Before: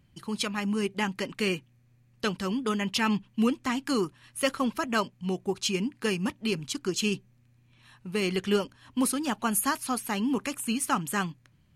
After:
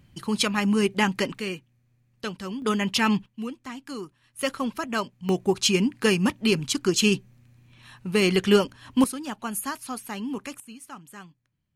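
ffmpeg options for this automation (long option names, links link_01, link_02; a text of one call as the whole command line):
ffmpeg -i in.wav -af "asetnsamples=nb_out_samples=441:pad=0,asendcmd='1.38 volume volume -3.5dB;2.62 volume volume 4dB;3.26 volume volume -8.5dB;4.39 volume volume -0.5dB;5.29 volume volume 7dB;9.04 volume volume -4dB;10.6 volume volume -15dB',volume=6.5dB" out.wav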